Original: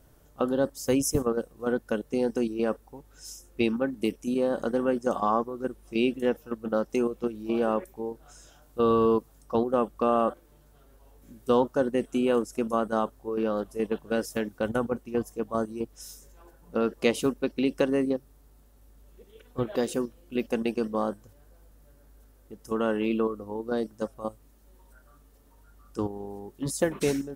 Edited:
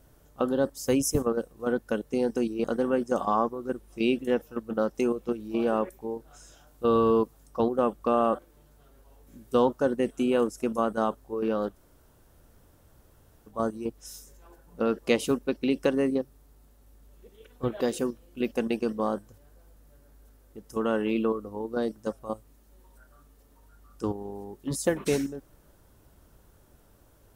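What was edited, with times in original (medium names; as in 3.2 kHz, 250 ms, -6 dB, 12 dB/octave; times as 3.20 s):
2.64–4.59 s: delete
13.68–15.46 s: room tone, crossfade 0.10 s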